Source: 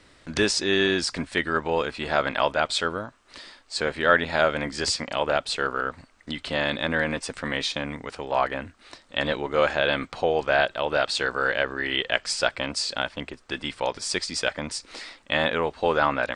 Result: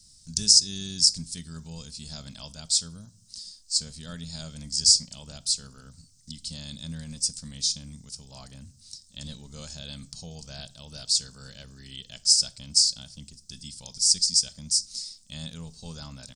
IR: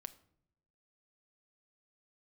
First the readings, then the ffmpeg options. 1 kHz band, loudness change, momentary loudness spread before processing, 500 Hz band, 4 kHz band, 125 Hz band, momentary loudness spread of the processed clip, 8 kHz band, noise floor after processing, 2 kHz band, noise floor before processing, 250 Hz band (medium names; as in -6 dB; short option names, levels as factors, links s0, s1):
-28.5 dB, +2.5 dB, 12 LU, -27.0 dB, +3.5 dB, -2.5 dB, 23 LU, +11.0 dB, -57 dBFS, -27.5 dB, -57 dBFS, -10.5 dB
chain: -filter_complex "[0:a]firequalizer=gain_entry='entry(170,0);entry(340,-25);entry(1900,-28);entry(5100,13)':delay=0.05:min_phase=1,asplit=2[s0][s1];[1:a]atrim=start_sample=2205,asetrate=57330,aresample=44100[s2];[s1][s2]afir=irnorm=-1:irlink=0,volume=4.22[s3];[s0][s3]amix=inputs=2:normalize=0,volume=0.282"